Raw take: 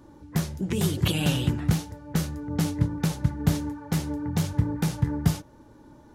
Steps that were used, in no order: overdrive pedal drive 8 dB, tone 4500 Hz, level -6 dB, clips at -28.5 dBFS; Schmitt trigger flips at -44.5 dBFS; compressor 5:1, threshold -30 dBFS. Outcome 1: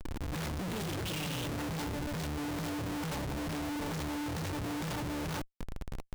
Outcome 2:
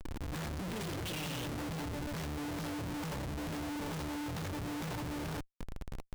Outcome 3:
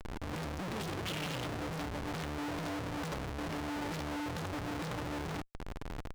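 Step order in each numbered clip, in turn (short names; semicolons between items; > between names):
overdrive pedal > compressor > Schmitt trigger; compressor > overdrive pedal > Schmitt trigger; compressor > Schmitt trigger > overdrive pedal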